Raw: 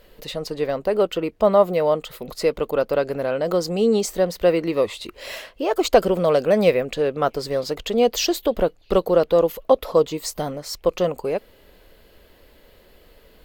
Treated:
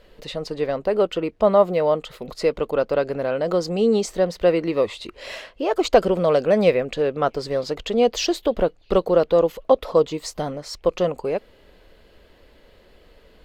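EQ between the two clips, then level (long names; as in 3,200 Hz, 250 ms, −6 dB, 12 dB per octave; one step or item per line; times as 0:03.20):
high-frequency loss of the air 51 metres
0.0 dB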